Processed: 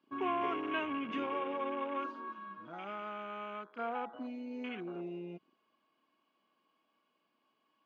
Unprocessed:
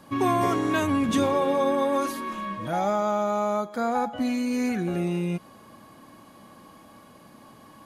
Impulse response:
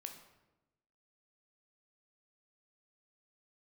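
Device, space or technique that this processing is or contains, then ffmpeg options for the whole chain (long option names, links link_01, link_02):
phone earpiece: -filter_complex "[0:a]afwtdn=0.02,asettb=1/sr,asplit=3[link_01][link_02][link_03];[link_01]atrim=end=2.324[link_04];[link_02]atrim=start=2.32:end=3.79,asetpts=PTS-STARTPTS,afade=type=in:duration=0.004:curve=qsin,afade=type=out:start_time=1.466:duration=0.004:curve=qsin,equalizer=frequency=630:width_type=o:width=1.3:gain=-9.5[link_05];[link_03]atrim=start=3.786[link_06];[link_04][link_05]acrossfade=duration=0.004:curve1=hsin:curve2=qsin[link_07];[link_07][link_06]acrossfade=duration=0.004:curve1=qsin:curve2=hsin,highpass=490,equalizer=frequency=550:width_type=q:width=4:gain=-9,equalizer=frequency=810:width_type=q:width=4:gain=-9,equalizer=frequency=1200:width_type=q:width=4:gain=-4,equalizer=frequency=1800:width_type=q:width=4:gain=-8,equalizer=frequency=2800:width_type=q:width=4:gain=5,equalizer=frequency=3900:width_type=q:width=4:gain=-6,lowpass=frequency=4200:width=0.5412,lowpass=frequency=4200:width=1.3066,volume=-4dB"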